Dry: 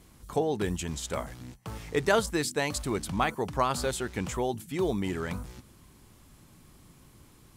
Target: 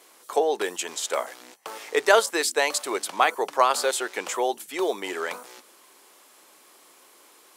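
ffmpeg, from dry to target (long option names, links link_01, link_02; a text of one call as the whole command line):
ffmpeg -i in.wav -af "highpass=frequency=420:width=0.5412,highpass=frequency=420:width=1.3066,volume=7.5dB" out.wav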